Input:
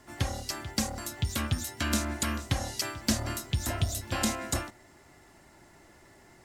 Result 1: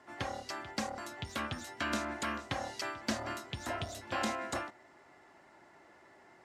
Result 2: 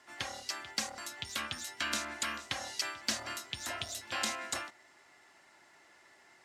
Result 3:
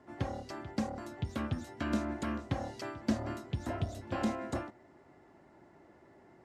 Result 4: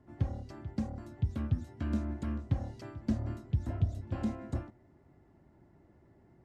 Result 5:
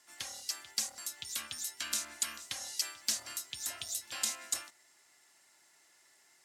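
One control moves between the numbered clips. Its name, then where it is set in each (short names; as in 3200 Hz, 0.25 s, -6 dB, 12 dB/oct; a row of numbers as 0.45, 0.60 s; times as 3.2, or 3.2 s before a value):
band-pass, frequency: 980, 2500, 380, 120, 7800 Hz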